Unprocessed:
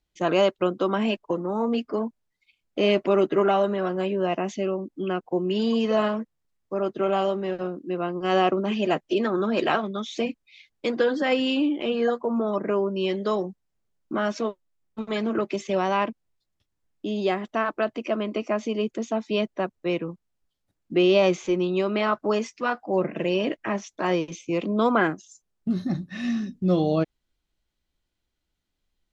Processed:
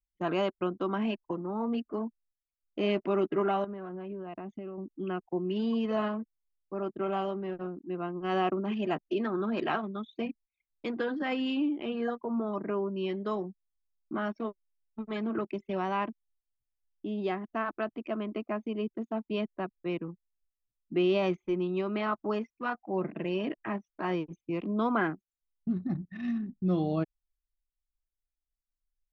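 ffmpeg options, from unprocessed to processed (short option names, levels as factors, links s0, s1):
-filter_complex "[0:a]asettb=1/sr,asplit=3[s0][s1][s2];[s0]atrim=end=3.644[s3];[s1]atrim=start=3.64:end=4.78,asetpts=PTS-STARTPTS,afade=t=in:d=0.004:c=qsin,afade=t=out:st=1.136:d=0.004:c=qsin,acompressor=threshold=0.0398:ratio=8:attack=3.2:release=140:knee=1:detection=peak[s4];[s2]atrim=start=4.776[s5];[s3][s4]acrossfade=d=0.004:c1=hsin:c2=qsin[s6];[s6][s5]acrossfade=d=0.004:c1=qsin:c2=hsin,aemphasis=mode=reproduction:type=75kf,anlmdn=1.58,equalizer=f=530:w=2.9:g=-8,volume=0.562"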